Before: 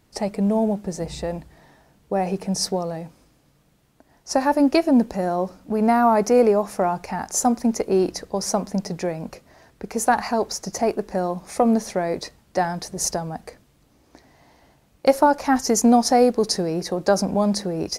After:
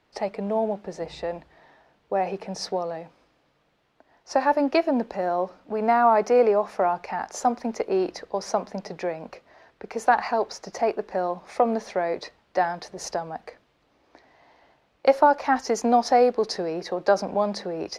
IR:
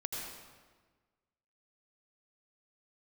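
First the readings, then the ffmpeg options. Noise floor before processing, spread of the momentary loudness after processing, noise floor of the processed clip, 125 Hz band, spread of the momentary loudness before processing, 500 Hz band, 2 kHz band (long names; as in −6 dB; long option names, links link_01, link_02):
−60 dBFS, 13 LU, −67 dBFS, −11.5 dB, 12 LU, −1.5 dB, 0.0 dB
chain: -filter_complex "[0:a]acrossover=split=370 4500:gain=0.224 1 0.0794[link_01][link_02][link_03];[link_01][link_02][link_03]amix=inputs=3:normalize=0"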